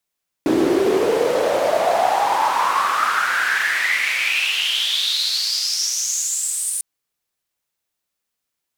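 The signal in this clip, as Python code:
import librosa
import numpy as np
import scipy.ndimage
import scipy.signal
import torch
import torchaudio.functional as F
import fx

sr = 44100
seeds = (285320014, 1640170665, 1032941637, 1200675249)

y = fx.riser_noise(sr, seeds[0], length_s=6.35, colour='white', kind='bandpass', start_hz=310.0, end_hz=9400.0, q=7.5, swell_db=-20.5, law='exponential')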